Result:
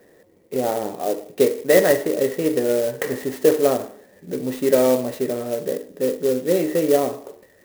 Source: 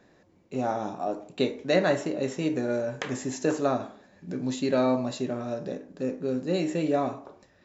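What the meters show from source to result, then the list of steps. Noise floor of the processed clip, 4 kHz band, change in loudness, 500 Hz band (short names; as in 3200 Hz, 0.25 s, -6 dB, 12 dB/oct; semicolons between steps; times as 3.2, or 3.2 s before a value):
-55 dBFS, +4.5 dB, +8.0 dB, +10.0 dB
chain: small resonant body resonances 460/1900 Hz, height 14 dB, ringing for 20 ms; clock jitter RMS 0.05 ms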